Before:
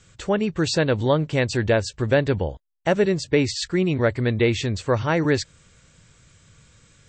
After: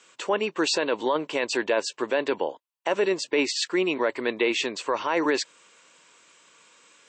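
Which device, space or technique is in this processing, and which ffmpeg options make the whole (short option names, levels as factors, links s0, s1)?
laptop speaker: -af "highpass=f=300:w=0.5412,highpass=f=300:w=1.3066,equalizer=f=1000:t=o:w=0.36:g=10.5,equalizer=f=2700:t=o:w=0.43:g=6,alimiter=limit=0.2:level=0:latency=1:release=11"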